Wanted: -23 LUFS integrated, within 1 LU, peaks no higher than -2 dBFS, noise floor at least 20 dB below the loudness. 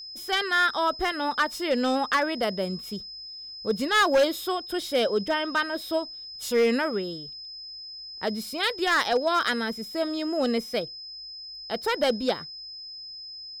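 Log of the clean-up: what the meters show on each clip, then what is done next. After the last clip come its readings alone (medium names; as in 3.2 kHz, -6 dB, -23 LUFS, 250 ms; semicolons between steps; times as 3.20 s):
clipped samples 0.6%; clipping level -16.0 dBFS; steady tone 5.1 kHz; tone level -38 dBFS; loudness -26.0 LUFS; peak level -16.0 dBFS; loudness target -23.0 LUFS
-> clip repair -16 dBFS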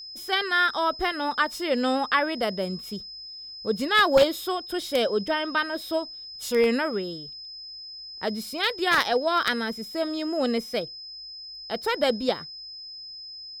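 clipped samples 0.0%; steady tone 5.1 kHz; tone level -38 dBFS
-> band-stop 5.1 kHz, Q 30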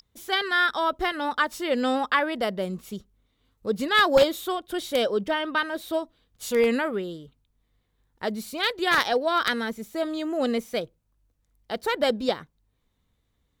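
steady tone not found; loudness -25.5 LUFS; peak level -7.0 dBFS; loudness target -23.0 LUFS
-> trim +2.5 dB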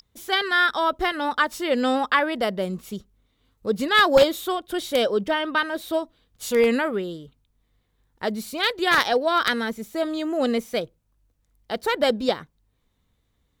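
loudness -23.0 LUFS; peak level -4.5 dBFS; noise floor -70 dBFS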